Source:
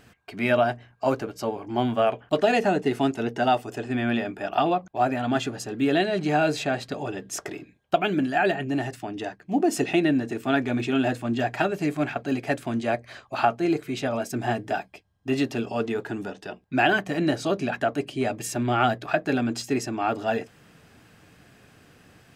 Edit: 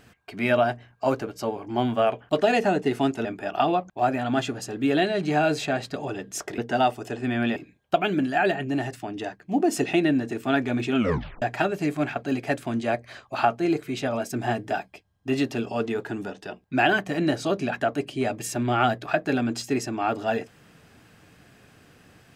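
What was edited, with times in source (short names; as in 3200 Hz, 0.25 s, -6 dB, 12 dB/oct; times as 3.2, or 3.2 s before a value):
3.25–4.23 move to 7.56
10.96 tape stop 0.46 s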